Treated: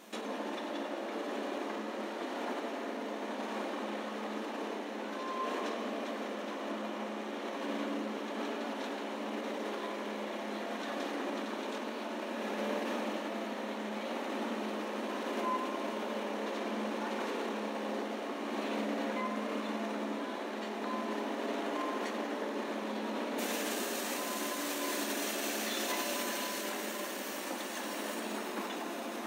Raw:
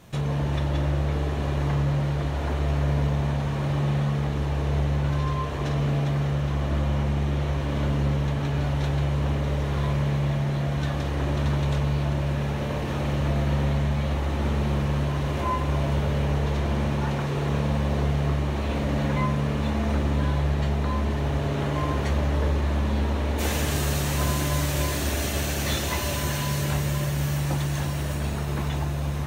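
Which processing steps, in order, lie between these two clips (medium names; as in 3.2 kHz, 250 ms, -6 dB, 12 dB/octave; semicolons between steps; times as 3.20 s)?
peak limiter -24.5 dBFS, peak gain reduction 11.5 dB; brick-wall FIR high-pass 200 Hz; tape echo 93 ms, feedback 87%, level -9 dB, low-pass 4.6 kHz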